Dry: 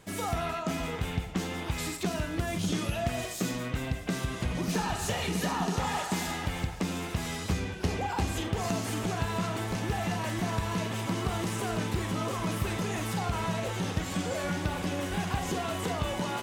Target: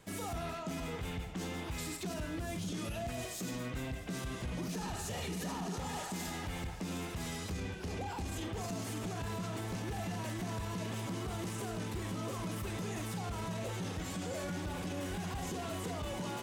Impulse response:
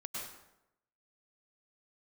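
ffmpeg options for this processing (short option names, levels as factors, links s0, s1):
-filter_complex "[0:a]acrossover=split=550|4600[s0][s1][s2];[s1]asoftclip=type=tanh:threshold=0.0133[s3];[s0][s3][s2]amix=inputs=3:normalize=0,alimiter=level_in=1.41:limit=0.0631:level=0:latency=1:release=17,volume=0.708,volume=0.631"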